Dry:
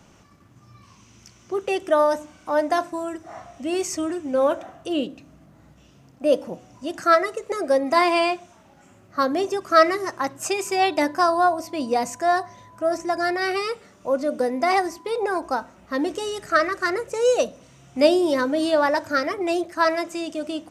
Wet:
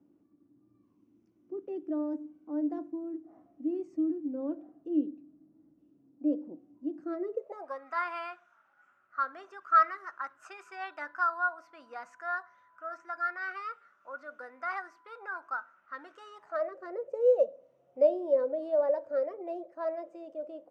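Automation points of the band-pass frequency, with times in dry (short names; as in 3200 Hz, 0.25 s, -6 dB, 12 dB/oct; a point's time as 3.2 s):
band-pass, Q 7.9
7.18 s 300 Hz
7.81 s 1400 Hz
16.26 s 1400 Hz
16.75 s 540 Hz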